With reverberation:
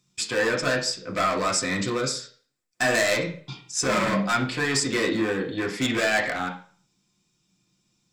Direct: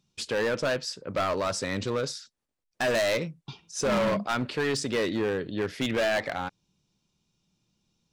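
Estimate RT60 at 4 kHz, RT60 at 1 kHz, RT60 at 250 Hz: 0.40 s, 0.45 s, 0.40 s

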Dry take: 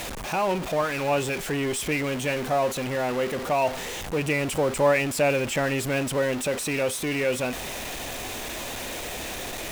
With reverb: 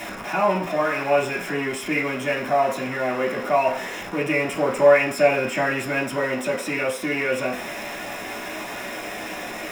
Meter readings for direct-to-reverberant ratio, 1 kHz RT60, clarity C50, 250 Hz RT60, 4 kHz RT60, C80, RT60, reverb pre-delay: -5.0 dB, 0.50 s, 9.5 dB, 0.40 s, 0.55 s, 13.5 dB, 0.50 s, 3 ms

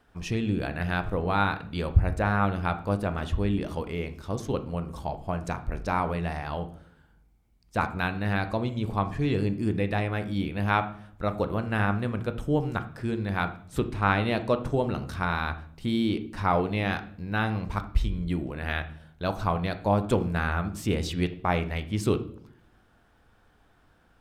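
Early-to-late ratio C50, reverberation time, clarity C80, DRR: 13.5 dB, 0.60 s, 17.5 dB, 9.0 dB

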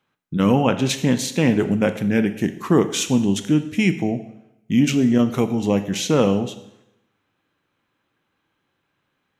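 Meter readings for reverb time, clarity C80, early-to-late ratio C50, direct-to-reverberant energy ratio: 0.85 s, 14.5 dB, 12.5 dB, 9.5 dB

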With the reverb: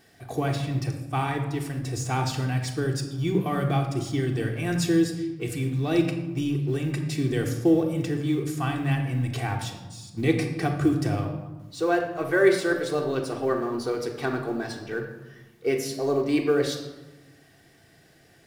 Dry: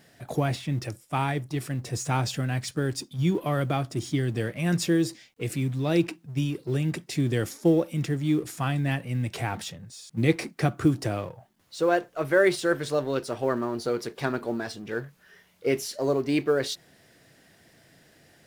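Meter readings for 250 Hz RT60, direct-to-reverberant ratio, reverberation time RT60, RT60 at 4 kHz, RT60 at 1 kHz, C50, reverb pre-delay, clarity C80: 1.6 s, 1.5 dB, 1.2 s, 0.70 s, 1.1 s, 7.0 dB, 3 ms, 9.0 dB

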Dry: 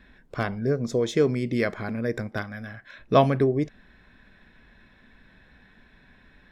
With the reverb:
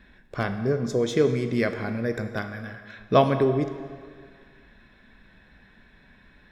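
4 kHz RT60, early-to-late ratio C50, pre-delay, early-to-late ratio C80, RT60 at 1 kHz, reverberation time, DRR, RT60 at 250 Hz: 1.6 s, 9.5 dB, 3 ms, 10.5 dB, 2.0 s, 1.9 s, 8.0 dB, 1.8 s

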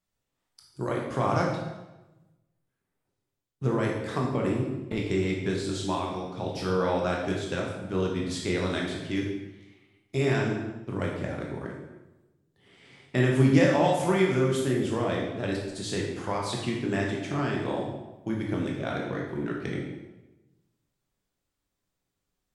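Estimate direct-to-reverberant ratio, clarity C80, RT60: -2.0 dB, 5.5 dB, 1.1 s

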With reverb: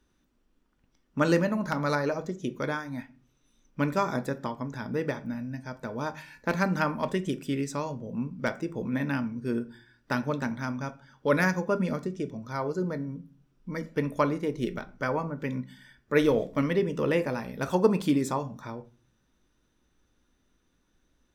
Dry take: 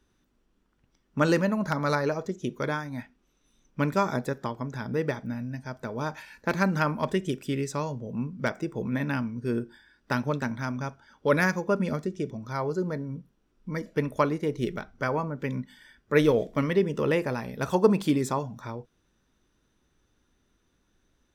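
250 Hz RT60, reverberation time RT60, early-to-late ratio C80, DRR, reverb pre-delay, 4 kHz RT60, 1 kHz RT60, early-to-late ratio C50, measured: 0.55 s, 0.40 s, 24.5 dB, 11.0 dB, 3 ms, 0.25 s, 0.40 s, 19.5 dB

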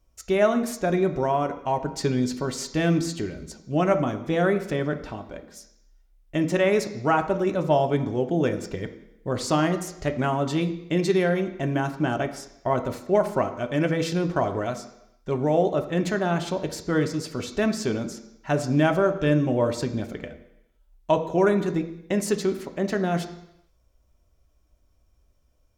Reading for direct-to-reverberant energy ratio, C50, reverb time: 6.0 dB, 11.5 dB, 0.80 s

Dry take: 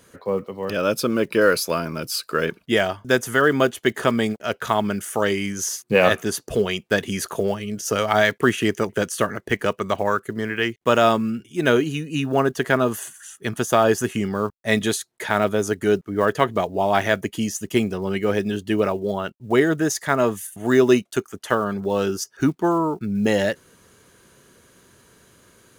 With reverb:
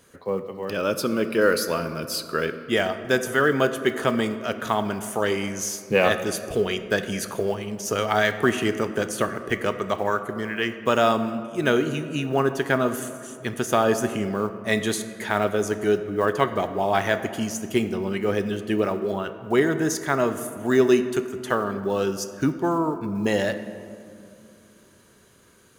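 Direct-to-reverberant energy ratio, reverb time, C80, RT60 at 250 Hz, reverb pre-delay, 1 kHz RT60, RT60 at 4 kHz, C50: 9.0 dB, 2.5 s, 12.0 dB, 3.2 s, 3 ms, 2.2 s, 1.2 s, 11.0 dB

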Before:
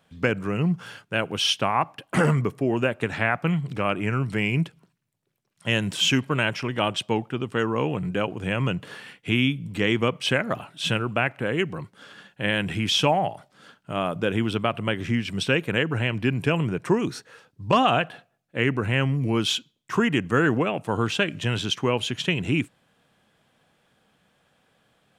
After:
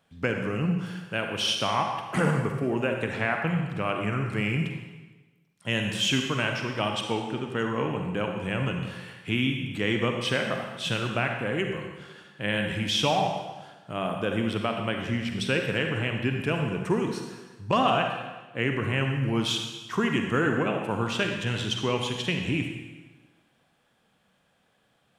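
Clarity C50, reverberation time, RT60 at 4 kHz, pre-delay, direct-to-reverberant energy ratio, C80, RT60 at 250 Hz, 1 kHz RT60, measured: 3.5 dB, 1.2 s, 1.2 s, 40 ms, 3.0 dB, 5.5 dB, 1.3 s, 1.2 s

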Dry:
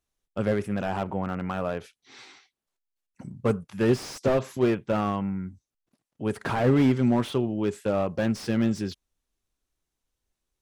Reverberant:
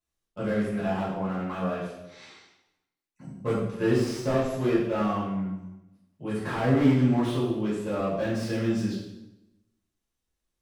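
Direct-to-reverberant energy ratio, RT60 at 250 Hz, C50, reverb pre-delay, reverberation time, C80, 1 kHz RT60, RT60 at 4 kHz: -9.5 dB, 1.0 s, 2.0 dB, 3 ms, 0.95 s, 5.0 dB, 0.90 s, 0.80 s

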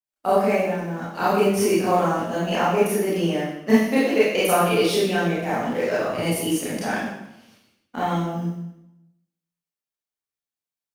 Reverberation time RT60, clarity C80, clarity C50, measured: 0.85 s, 3.0 dB, -1.0 dB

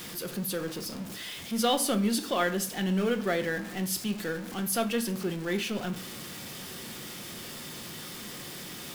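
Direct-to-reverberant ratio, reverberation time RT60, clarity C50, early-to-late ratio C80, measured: 7.5 dB, 0.60 s, 14.5 dB, 18.0 dB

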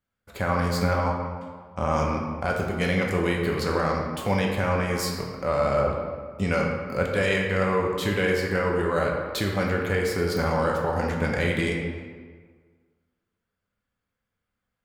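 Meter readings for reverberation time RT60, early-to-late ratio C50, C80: 1.7 s, 2.5 dB, 4.0 dB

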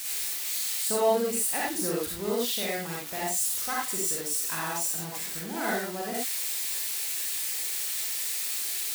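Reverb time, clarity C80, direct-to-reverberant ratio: not exponential, 4.5 dB, -4.5 dB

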